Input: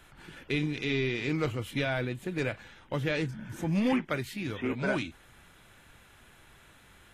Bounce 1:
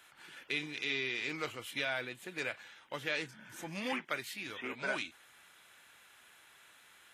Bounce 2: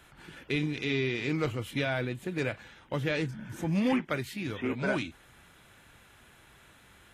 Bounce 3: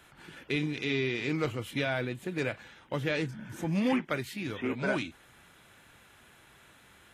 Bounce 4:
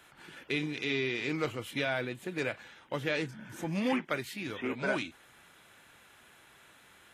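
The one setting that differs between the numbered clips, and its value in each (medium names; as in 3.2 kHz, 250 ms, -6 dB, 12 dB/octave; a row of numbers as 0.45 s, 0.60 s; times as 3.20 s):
high-pass, cutoff frequency: 1.3 kHz, 44 Hz, 120 Hz, 320 Hz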